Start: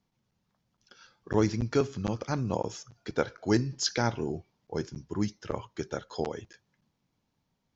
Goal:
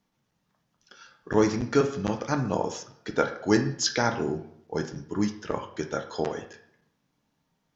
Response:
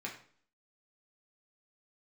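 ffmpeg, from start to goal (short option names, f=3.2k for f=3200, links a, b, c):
-filter_complex "[0:a]asplit=2[a][b];[1:a]atrim=start_sample=2205,asetrate=33075,aresample=44100,lowshelf=f=180:g=-11.5[c];[b][c]afir=irnorm=-1:irlink=0,volume=-1dB[d];[a][d]amix=inputs=2:normalize=0"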